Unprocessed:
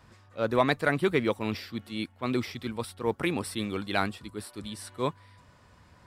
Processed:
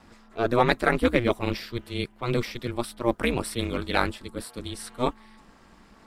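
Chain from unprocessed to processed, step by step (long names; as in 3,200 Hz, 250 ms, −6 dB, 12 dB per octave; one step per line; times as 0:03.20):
ring modulation 120 Hz
level +6.5 dB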